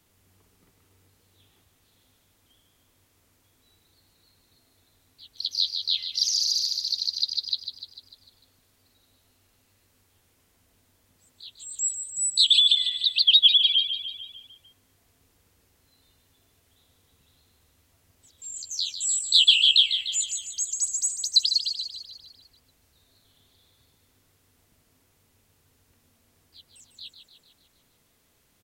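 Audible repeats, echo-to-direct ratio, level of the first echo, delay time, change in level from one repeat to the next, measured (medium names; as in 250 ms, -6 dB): 6, -7.5 dB, -9.0 dB, 149 ms, -5.0 dB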